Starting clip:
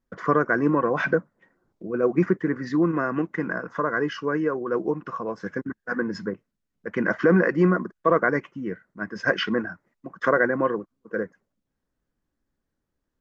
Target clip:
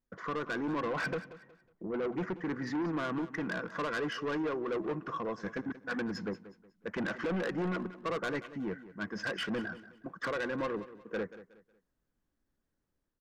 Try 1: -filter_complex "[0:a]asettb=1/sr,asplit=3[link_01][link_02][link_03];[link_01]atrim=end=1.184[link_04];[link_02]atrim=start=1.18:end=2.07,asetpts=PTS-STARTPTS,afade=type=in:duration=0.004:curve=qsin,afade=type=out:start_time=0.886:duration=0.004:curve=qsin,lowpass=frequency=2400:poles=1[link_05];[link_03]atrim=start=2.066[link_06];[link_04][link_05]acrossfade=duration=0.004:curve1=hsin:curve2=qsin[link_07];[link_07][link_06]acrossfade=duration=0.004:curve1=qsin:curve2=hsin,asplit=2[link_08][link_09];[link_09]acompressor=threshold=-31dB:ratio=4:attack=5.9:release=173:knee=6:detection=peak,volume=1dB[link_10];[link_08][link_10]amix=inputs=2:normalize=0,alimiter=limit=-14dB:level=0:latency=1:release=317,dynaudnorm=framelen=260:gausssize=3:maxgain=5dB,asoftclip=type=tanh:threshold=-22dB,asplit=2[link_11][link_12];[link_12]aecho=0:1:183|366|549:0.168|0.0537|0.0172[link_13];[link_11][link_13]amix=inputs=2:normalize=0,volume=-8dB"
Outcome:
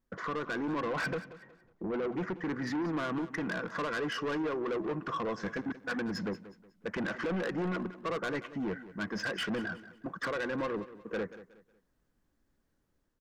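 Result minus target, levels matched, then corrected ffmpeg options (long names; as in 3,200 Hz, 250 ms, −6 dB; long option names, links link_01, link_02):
downward compressor: peak gain reduction +15 dB
-filter_complex "[0:a]asettb=1/sr,asplit=3[link_01][link_02][link_03];[link_01]atrim=end=1.184[link_04];[link_02]atrim=start=1.18:end=2.07,asetpts=PTS-STARTPTS,afade=type=in:duration=0.004:curve=qsin,afade=type=out:start_time=0.886:duration=0.004:curve=qsin,lowpass=frequency=2400:poles=1[link_05];[link_03]atrim=start=2.066[link_06];[link_04][link_05]acrossfade=duration=0.004:curve1=hsin:curve2=qsin[link_07];[link_07][link_06]acrossfade=duration=0.004:curve1=qsin:curve2=hsin,alimiter=limit=-14dB:level=0:latency=1:release=317,dynaudnorm=framelen=260:gausssize=3:maxgain=5dB,asoftclip=type=tanh:threshold=-22dB,asplit=2[link_08][link_09];[link_09]aecho=0:1:183|366|549:0.168|0.0537|0.0172[link_10];[link_08][link_10]amix=inputs=2:normalize=0,volume=-8dB"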